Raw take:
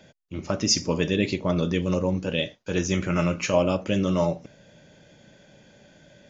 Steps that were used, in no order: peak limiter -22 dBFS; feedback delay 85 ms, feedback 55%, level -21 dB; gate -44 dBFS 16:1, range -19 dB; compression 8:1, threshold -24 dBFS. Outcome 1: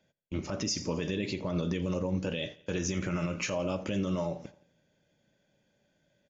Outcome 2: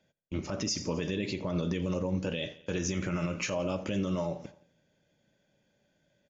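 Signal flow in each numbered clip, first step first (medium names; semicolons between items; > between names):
compression > peak limiter > gate > feedback delay; compression > gate > feedback delay > peak limiter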